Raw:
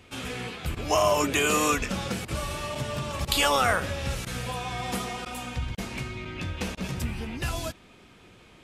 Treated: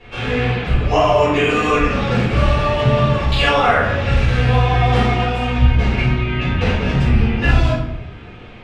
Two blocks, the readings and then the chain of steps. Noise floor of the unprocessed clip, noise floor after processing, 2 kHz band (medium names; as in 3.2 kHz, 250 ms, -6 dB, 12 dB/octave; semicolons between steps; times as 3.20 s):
-54 dBFS, -36 dBFS, +10.5 dB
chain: low-pass 2.8 kHz 12 dB/octave; de-hum 51.97 Hz, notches 32; gain riding within 3 dB 0.5 s; simulated room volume 150 m³, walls mixed, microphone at 4.2 m; trim -1 dB